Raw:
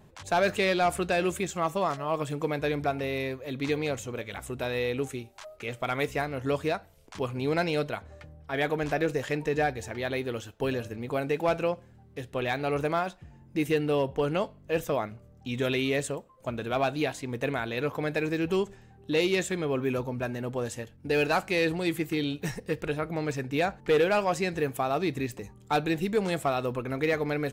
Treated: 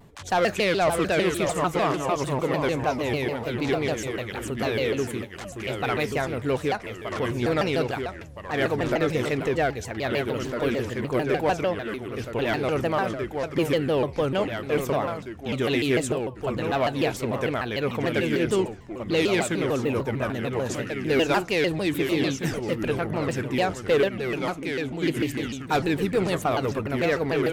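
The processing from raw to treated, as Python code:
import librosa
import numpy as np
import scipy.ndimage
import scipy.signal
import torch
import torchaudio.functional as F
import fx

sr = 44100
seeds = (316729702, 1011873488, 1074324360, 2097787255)

p1 = 10.0 ** (-26.0 / 20.0) * np.tanh(x / 10.0 ** (-26.0 / 20.0))
p2 = x + (p1 * librosa.db_to_amplitude(-4.5))
p3 = fx.formant_cascade(p2, sr, vowel='i', at=(24.08, 25.01), fade=0.02)
p4 = fx.echo_pitch(p3, sr, ms=514, semitones=-2, count=2, db_per_echo=-6.0)
y = fx.vibrato_shape(p4, sr, shape='saw_down', rate_hz=6.7, depth_cents=250.0)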